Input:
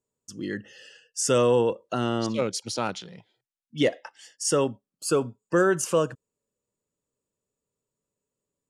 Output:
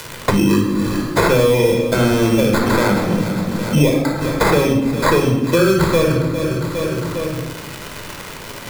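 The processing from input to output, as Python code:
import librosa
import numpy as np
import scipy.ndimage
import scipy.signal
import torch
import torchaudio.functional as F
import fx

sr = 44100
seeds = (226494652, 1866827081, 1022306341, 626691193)

p1 = fx.peak_eq(x, sr, hz=240.0, db=8.0, octaves=0.68)
p2 = fx.over_compress(p1, sr, threshold_db=-30.0, ratio=-1.0)
p3 = p1 + (p2 * 10.0 ** (-1.0 / 20.0))
p4 = fx.sample_hold(p3, sr, seeds[0], rate_hz=2900.0, jitter_pct=0)
p5 = fx.dmg_crackle(p4, sr, seeds[1], per_s=240.0, level_db=-45.0)
p6 = p5 + fx.echo_feedback(p5, sr, ms=407, feedback_pct=35, wet_db=-18.0, dry=0)
p7 = fx.room_shoebox(p6, sr, seeds[2], volume_m3=2300.0, walls='furnished', distance_m=4.9)
y = fx.band_squash(p7, sr, depth_pct=100)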